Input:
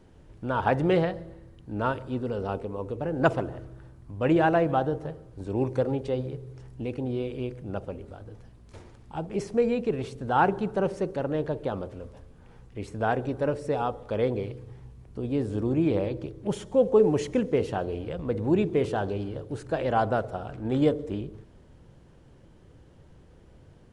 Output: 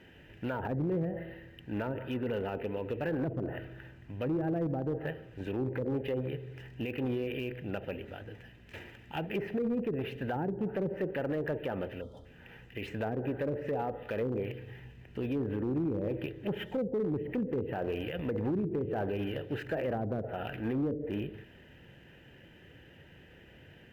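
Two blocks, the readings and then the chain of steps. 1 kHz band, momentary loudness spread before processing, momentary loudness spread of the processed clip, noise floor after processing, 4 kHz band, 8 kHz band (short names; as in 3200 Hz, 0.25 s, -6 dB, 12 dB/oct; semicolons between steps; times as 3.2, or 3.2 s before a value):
-12.0 dB, 16 LU, 14 LU, -56 dBFS, -4.0 dB, n/a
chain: spectral gain 12.01–12.25, 1400–3100 Hz -29 dB; treble ducked by the level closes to 330 Hz, closed at -21 dBFS; band shelf 2300 Hz +15 dB 1.2 oct; limiter -23.5 dBFS, peak gain reduction 9.5 dB; notch comb 1100 Hz; overloaded stage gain 26 dB; decimation joined by straight lines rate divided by 3×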